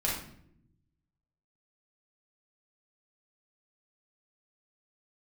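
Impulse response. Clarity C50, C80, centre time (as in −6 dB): 2.5 dB, 7.5 dB, 44 ms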